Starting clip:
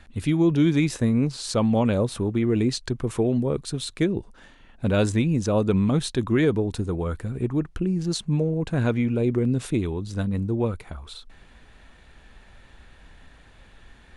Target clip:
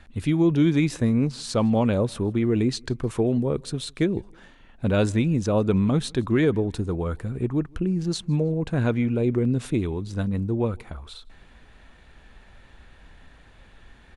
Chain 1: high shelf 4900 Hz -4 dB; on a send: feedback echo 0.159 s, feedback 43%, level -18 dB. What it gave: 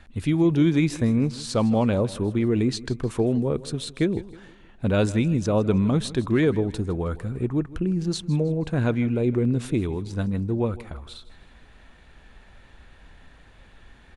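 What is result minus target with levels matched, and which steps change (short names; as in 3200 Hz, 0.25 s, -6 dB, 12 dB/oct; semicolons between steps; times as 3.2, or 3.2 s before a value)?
echo-to-direct +10.5 dB
change: feedback echo 0.159 s, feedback 43%, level -28.5 dB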